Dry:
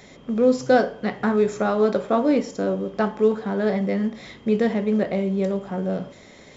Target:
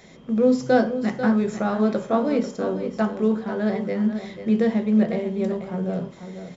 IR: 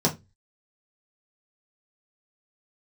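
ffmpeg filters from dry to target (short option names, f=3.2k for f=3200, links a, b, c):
-filter_complex "[0:a]aecho=1:1:492:0.316,asplit=2[a][b];[1:a]atrim=start_sample=2205,adelay=6[c];[b][c]afir=irnorm=-1:irlink=0,volume=-23dB[d];[a][d]amix=inputs=2:normalize=0,volume=-3dB"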